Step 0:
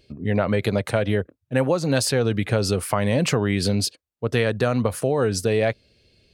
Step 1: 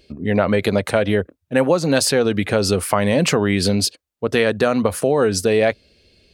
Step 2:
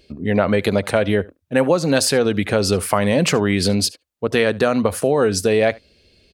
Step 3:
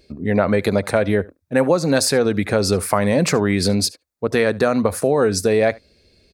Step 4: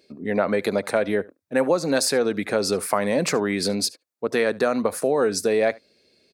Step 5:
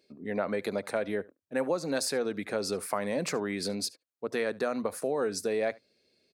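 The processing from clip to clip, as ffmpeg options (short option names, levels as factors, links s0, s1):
-af "equalizer=f=120:t=o:w=0.31:g=-14.5,volume=1.78"
-af "aecho=1:1:73:0.0668"
-af "equalizer=f=3000:w=4.4:g=-11"
-af "highpass=220,volume=0.668"
-af "bandreject=f=60:t=h:w=6,bandreject=f=120:t=h:w=6,volume=0.355"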